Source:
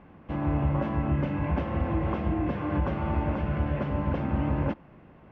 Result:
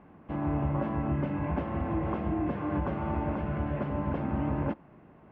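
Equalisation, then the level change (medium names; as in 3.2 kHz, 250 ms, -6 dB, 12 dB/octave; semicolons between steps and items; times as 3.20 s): bass shelf 110 Hz -8.5 dB; treble shelf 2.6 kHz -11.5 dB; band-stop 520 Hz, Q 12; 0.0 dB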